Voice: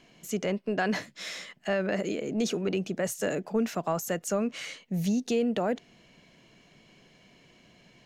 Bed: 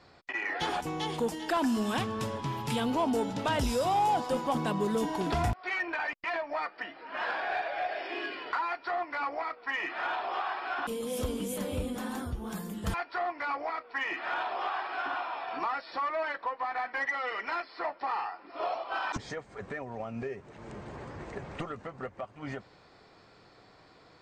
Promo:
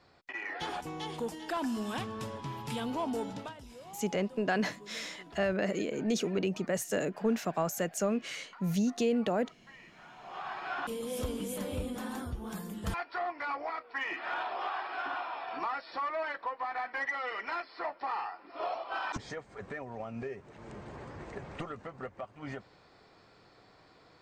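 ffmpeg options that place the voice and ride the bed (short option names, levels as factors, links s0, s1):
-filter_complex "[0:a]adelay=3700,volume=0.794[s0];[1:a]volume=4.73,afade=t=out:st=3.34:d=0.2:silence=0.158489,afade=t=in:st=10.16:d=0.52:silence=0.112202[s1];[s0][s1]amix=inputs=2:normalize=0"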